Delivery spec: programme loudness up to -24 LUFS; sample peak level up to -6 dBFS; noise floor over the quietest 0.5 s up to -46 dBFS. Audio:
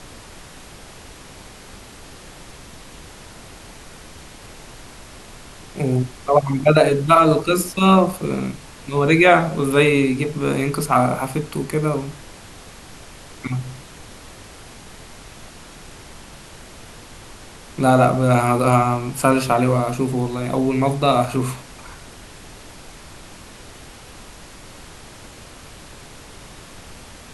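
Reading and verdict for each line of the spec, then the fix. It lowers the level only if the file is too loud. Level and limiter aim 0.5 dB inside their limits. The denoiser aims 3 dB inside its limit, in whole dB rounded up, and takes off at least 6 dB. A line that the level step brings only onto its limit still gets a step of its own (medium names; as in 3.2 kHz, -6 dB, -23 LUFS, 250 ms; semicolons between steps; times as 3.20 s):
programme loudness -18.0 LUFS: fail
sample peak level -1.5 dBFS: fail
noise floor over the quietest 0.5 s -41 dBFS: fail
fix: trim -6.5 dB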